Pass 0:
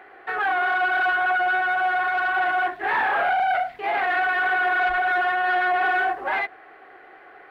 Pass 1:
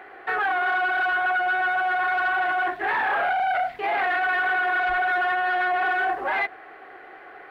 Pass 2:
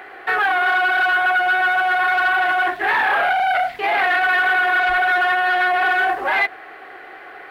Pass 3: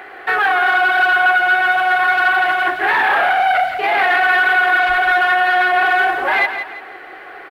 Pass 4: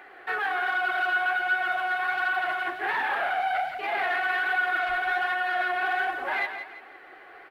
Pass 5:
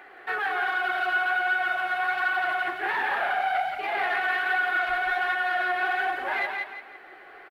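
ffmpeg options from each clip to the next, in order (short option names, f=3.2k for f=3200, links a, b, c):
-af "alimiter=limit=-20.5dB:level=0:latency=1:release=11,volume=3dB"
-af "highshelf=f=2.5k:g=9,volume=4dB"
-af "aecho=1:1:170|340|510|680:0.355|0.121|0.041|0.0139,volume=2.5dB"
-af "flanger=delay=3.3:depth=8.3:regen=52:speed=1.3:shape=sinusoidal,volume=-8.5dB"
-af "aecho=1:1:175:0.447"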